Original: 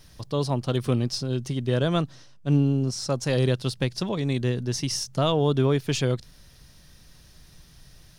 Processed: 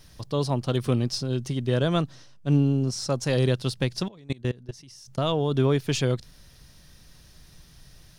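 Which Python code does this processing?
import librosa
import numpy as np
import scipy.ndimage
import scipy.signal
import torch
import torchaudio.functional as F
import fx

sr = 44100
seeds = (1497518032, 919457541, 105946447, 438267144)

y = fx.level_steps(x, sr, step_db=24, at=(4.08, 5.53))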